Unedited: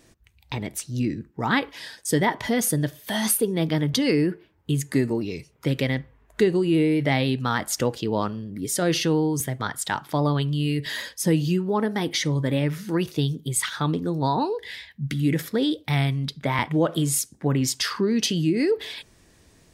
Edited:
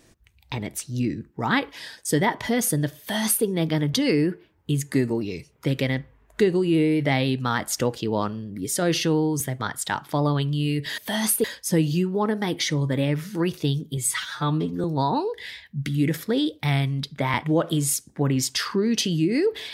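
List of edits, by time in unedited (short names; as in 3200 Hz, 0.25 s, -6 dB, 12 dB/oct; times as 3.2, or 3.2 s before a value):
2.99–3.45 copy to 10.98
13.51–14.09 stretch 1.5×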